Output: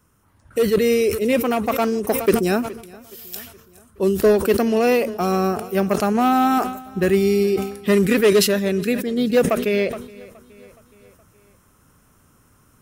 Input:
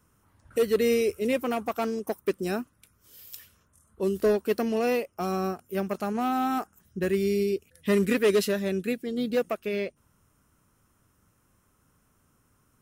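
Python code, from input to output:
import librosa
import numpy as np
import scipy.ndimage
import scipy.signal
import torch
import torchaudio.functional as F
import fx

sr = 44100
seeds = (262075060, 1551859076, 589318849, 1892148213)

p1 = fx.rider(x, sr, range_db=10, speed_s=2.0)
p2 = p1 + fx.echo_feedback(p1, sr, ms=420, feedback_pct=56, wet_db=-23, dry=0)
p3 = fx.sustainer(p2, sr, db_per_s=84.0)
y = p3 * librosa.db_to_amplitude(7.5)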